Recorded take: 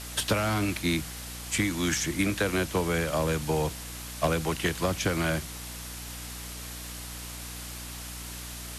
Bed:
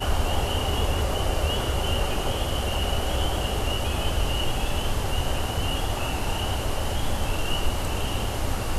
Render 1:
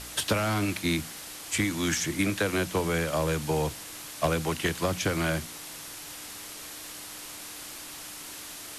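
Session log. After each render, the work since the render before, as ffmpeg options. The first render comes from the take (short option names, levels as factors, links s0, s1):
-af "bandreject=f=60:t=h:w=4,bandreject=f=120:t=h:w=4,bandreject=f=180:t=h:w=4,bandreject=f=240:t=h:w=4"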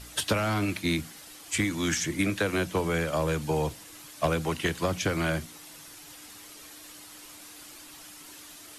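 -af "afftdn=nr=8:nf=-42"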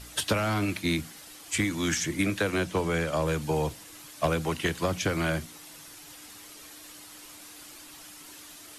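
-filter_complex "[0:a]asettb=1/sr,asplit=3[s0][s1][s2];[s0]atrim=end=2.504[s3];[s1]atrim=start=2.5:end=3.26,asetpts=PTS-STARTPTS,afade=t=in:d=0.004:c=qsin,afade=t=out:st=0.756:d=0.004:c=qsin,lowpass=11000[s4];[s2]atrim=start=3.256[s5];[s3][s4]acrossfade=d=0.004:c1=hsin:c2=qsin[s6];[s6][s5]acrossfade=d=0.004:c1=qsin:c2=hsin"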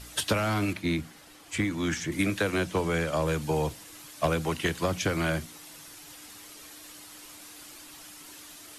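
-filter_complex "[0:a]asettb=1/sr,asplit=3[s0][s1][s2];[s0]atrim=end=0.734[s3];[s1]atrim=start=0.73:end=2.12,asetpts=PTS-STARTPTS,afade=t=in:d=0.004:c=qsin,afade=t=out:st=1.386:d=0.004:c=qsin,highshelf=f=3500:g=-9.5[s4];[s2]atrim=start=2.116[s5];[s3][s4]acrossfade=d=0.004:c1=hsin:c2=qsin[s6];[s6][s5]acrossfade=d=0.004:c1=qsin:c2=hsin"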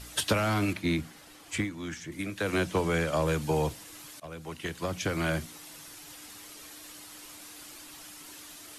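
-filter_complex "[0:a]asplit=4[s0][s1][s2][s3];[s0]atrim=end=1.71,asetpts=PTS-STARTPTS,afade=t=out:st=1.55:d=0.16:silence=0.375837[s4];[s1]atrim=start=1.71:end=2.36,asetpts=PTS-STARTPTS,volume=0.376[s5];[s2]atrim=start=2.36:end=4.2,asetpts=PTS-STARTPTS,afade=t=in:d=0.16:silence=0.375837,afade=t=out:st=1.836:d=0.004:c=hsin:silence=0.0841395[s6];[s3]atrim=start=4.2,asetpts=PTS-STARTPTS,afade=t=in:d=1.27:silence=0.0841395[s7];[s4][s5][s6][s7]concat=n=4:v=0:a=1"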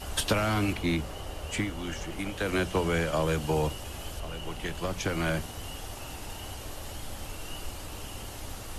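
-filter_complex "[1:a]volume=0.2[s0];[0:a][s0]amix=inputs=2:normalize=0"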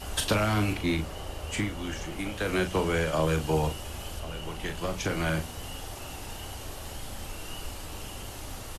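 -filter_complex "[0:a]asplit=2[s0][s1];[s1]adelay=38,volume=0.398[s2];[s0][s2]amix=inputs=2:normalize=0"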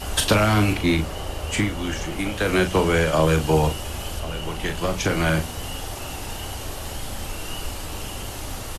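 -af "volume=2.37"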